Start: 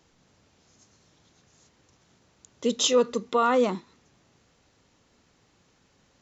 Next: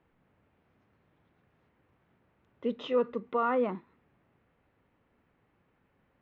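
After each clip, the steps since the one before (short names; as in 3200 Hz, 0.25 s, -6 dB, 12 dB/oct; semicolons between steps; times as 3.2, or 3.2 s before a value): LPF 2400 Hz 24 dB/oct; gain -6 dB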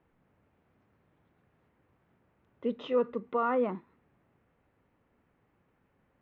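high shelf 3100 Hz -6.5 dB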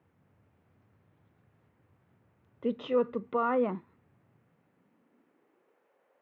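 high-pass sweep 97 Hz -> 510 Hz, 4.14–5.9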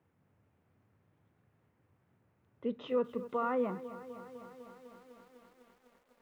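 lo-fi delay 0.251 s, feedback 80%, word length 9-bit, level -15 dB; gain -4.5 dB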